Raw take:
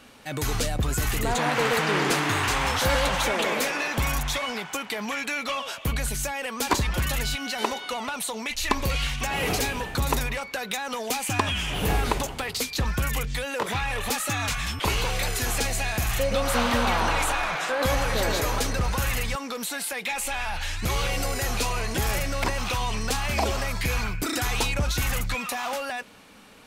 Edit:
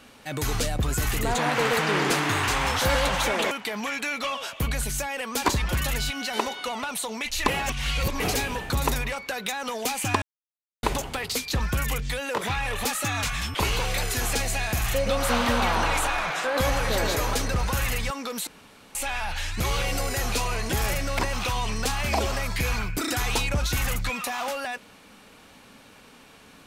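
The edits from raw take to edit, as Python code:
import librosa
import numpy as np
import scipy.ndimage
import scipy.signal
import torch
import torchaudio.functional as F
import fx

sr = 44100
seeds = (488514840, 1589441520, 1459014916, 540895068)

y = fx.edit(x, sr, fx.cut(start_s=3.51, length_s=1.25),
    fx.reverse_span(start_s=8.73, length_s=0.72),
    fx.silence(start_s=11.47, length_s=0.61),
    fx.room_tone_fill(start_s=19.72, length_s=0.48), tone=tone)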